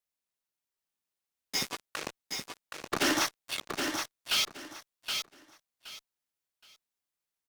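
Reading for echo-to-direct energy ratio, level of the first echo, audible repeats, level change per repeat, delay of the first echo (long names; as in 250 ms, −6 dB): −5.5 dB, −5.5 dB, 3, −13.0 dB, 771 ms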